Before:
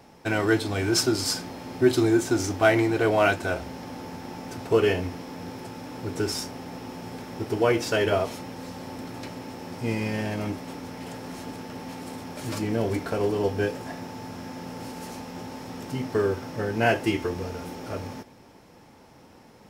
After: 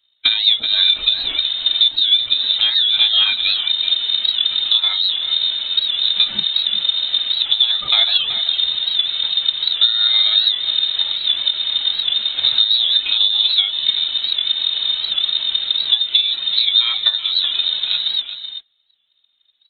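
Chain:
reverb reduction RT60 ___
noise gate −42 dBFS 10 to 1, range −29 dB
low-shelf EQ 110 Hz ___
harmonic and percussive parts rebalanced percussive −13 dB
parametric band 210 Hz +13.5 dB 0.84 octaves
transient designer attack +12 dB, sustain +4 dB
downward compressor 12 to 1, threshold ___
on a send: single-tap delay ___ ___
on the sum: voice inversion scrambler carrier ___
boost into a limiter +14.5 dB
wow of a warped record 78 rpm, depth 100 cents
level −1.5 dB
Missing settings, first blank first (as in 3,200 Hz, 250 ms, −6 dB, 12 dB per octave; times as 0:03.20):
0.61 s, −3 dB, −24 dBFS, 379 ms, −10.5 dB, 3,900 Hz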